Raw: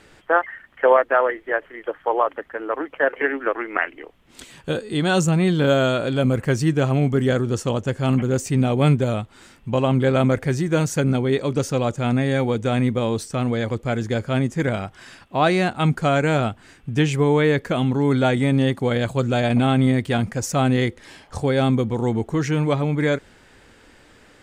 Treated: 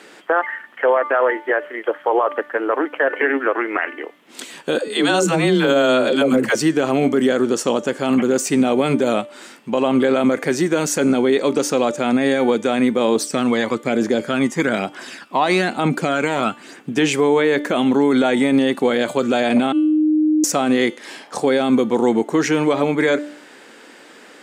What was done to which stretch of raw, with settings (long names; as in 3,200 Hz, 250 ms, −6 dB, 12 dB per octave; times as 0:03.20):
0:04.78–0:06.55: all-pass dispersion lows, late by 106 ms, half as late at 390 Hz
0:13.15–0:16.92: phase shifter 1.1 Hz, delay 1.1 ms, feedback 47%
0:17.62–0:18.46: notch filter 4,700 Hz
0:19.72–0:20.44: beep over 308 Hz −20.5 dBFS
whole clip: high-pass filter 230 Hz 24 dB per octave; hum removal 295 Hz, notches 36; brickwall limiter −16 dBFS; level +8.5 dB